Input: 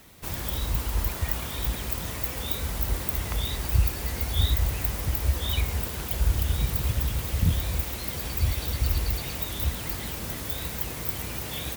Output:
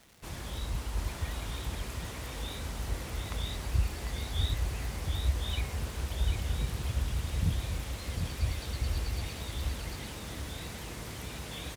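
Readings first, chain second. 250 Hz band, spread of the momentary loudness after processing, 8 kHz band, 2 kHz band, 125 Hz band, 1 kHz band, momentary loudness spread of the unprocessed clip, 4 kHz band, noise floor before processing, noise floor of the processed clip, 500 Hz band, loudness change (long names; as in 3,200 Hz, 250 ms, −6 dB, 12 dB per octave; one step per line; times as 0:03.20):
−5.5 dB, 8 LU, −8.0 dB, −5.5 dB, −5.5 dB, −5.5 dB, 5 LU, −6.0 dB, −35 dBFS, −42 dBFS, −5.5 dB, −7.5 dB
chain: Bessel low-pass filter 9,100 Hz, order 8
in parallel at −9.5 dB: bit reduction 7 bits
on the sum: surface crackle 390 per second −38 dBFS
single-tap delay 747 ms −5.5 dB
level −9 dB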